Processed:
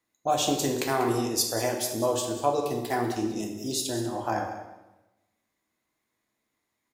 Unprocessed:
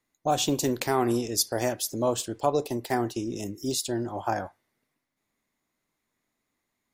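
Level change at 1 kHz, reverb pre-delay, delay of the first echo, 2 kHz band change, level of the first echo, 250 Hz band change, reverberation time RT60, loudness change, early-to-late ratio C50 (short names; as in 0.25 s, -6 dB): +1.0 dB, 3 ms, 0.192 s, +1.0 dB, -13.5 dB, -0.5 dB, 1.0 s, 0.0 dB, 5.0 dB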